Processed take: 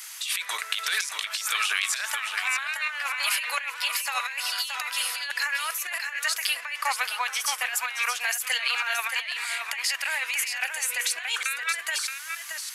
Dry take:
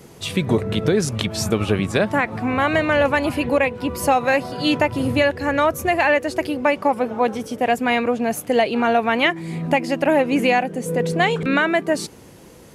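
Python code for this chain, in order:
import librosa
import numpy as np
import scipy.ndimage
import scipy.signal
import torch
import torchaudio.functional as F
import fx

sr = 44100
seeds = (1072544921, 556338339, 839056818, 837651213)

p1 = scipy.signal.sosfilt(scipy.signal.butter(4, 1400.0, 'highpass', fs=sr, output='sos'), x)
p2 = fx.high_shelf(p1, sr, hz=4400.0, db=6.0)
p3 = fx.over_compress(p2, sr, threshold_db=-33.0, ratio=-1.0)
p4 = p3 + fx.echo_single(p3, sr, ms=624, db=-6.5, dry=0)
y = F.gain(torch.from_numpy(p4), 3.0).numpy()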